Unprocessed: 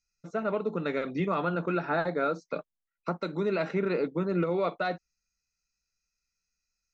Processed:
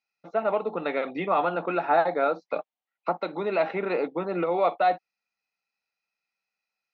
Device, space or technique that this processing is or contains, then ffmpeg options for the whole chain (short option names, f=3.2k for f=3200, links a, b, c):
phone earpiece: -af "highpass=350,equalizer=f=400:t=q:w=4:g=-4,equalizer=f=780:t=q:w=4:g=10,equalizer=f=1.5k:t=q:w=4:g=-5,lowpass=f=3.7k:w=0.5412,lowpass=f=3.7k:w=1.3066,volume=5dB"